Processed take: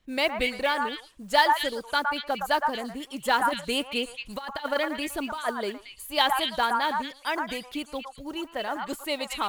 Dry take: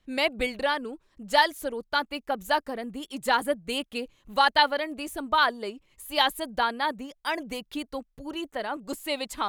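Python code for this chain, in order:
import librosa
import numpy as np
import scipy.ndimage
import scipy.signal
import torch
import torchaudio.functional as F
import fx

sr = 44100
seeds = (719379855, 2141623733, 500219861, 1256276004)

y = fx.over_compress(x, sr, threshold_db=-26.0, ratio=-0.5, at=(3.47, 6.05), fade=0.02)
y = fx.mod_noise(y, sr, seeds[0], snr_db=28)
y = fx.echo_stepped(y, sr, ms=113, hz=1100.0, octaves=1.4, feedback_pct=70, wet_db=0)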